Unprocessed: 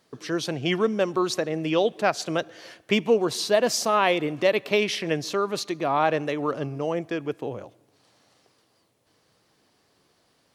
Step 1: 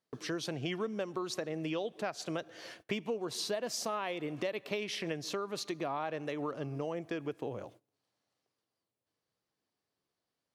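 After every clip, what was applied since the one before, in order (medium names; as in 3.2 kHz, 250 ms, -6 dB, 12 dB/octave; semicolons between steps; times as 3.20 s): gate -51 dBFS, range -19 dB; compression 5:1, threshold -30 dBFS, peak gain reduction 14 dB; trim -3.5 dB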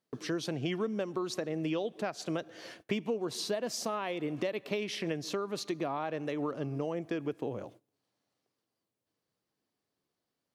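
peaking EQ 240 Hz +4.5 dB 1.9 oct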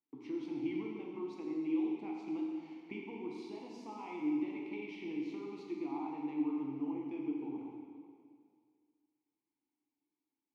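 vowel filter u; plate-style reverb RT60 2.1 s, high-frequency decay 0.95×, DRR -2.5 dB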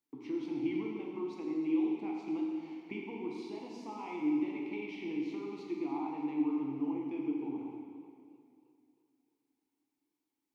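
modulated delay 308 ms, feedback 54%, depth 76 cents, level -20.5 dB; trim +3 dB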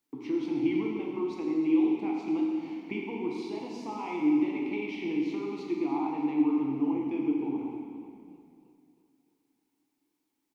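frequency-shifting echo 331 ms, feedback 39%, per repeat -40 Hz, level -21 dB; trim +6.5 dB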